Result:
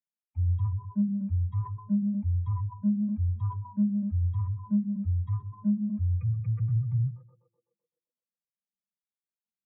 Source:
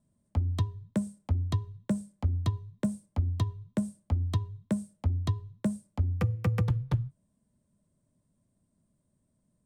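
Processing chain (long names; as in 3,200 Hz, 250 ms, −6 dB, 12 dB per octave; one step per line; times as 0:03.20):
reversed playback
downward compressor 12 to 1, threshold −34 dBFS, peak gain reduction 13.5 dB
reversed playback
parametric band 740 Hz −3.5 dB 2.7 octaves
on a send: tape delay 126 ms, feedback 88%, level −8.5 dB, low-pass 1,900 Hz
on the sum: mid-hump overdrive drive 40 dB, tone 2,700 Hz, clips at −27 dBFS
parametric band 2,300 Hz +14 dB 2.6 octaves
every bin expanded away from the loudest bin 4 to 1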